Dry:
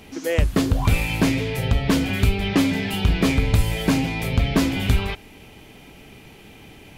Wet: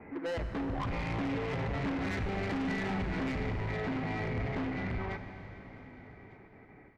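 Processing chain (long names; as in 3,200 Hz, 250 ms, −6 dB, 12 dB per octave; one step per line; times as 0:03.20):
source passing by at 0:02.14, 10 m/s, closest 9.4 metres
elliptic low-pass filter 2,100 Hz, stop band 40 dB
noise gate with hold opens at −51 dBFS
low-shelf EQ 86 Hz −10.5 dB
in parallel at 0 dB: downward compressor, threshold −31 dBFS, peak gain reduction 13.5 dB
on the sum: brickwall limiter −17.5 dBFS, peak gain reduction 9.5 dB
soft clipping −32 dBFS, distortion −7 dB
on a send: single-tap delay 1,200 ms −23 dB
on the sum: four-comb reverb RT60 4 s, combs from 28 ms, DRR 7.5 dB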